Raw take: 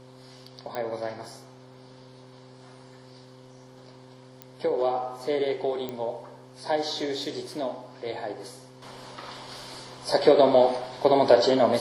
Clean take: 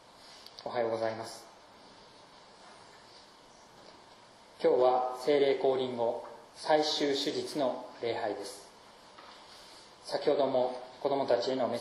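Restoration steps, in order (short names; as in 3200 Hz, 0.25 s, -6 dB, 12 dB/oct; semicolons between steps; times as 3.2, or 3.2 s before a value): de-click; de-hum 128.4 Hz, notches 4; gain correction -10.5 dB, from 8.82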